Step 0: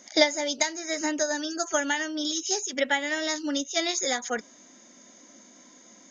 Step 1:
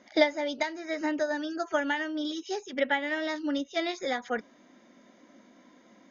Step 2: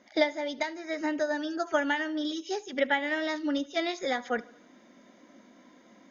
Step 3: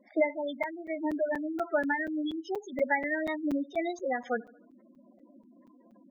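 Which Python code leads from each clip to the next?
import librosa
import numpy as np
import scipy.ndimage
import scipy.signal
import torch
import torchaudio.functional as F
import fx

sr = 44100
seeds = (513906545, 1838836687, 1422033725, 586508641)

y1 = fx.air_absorb(x, sr, metres=290.0)
y2 = fx.rider(y1, sr, range_db=10, speed_s=2.0)
y2 = fx.echo_feedback(y2, sr, ms=74, feedback_pct=55, wet_db=-22.5)
y3 = fx.spec_gate(y2, sr, threshold_db=-10, keep='strong')
y3 = fx.buffer_crackle(y3, sr, first_s=0.63, period_s=0.24, block=256, kind='zero')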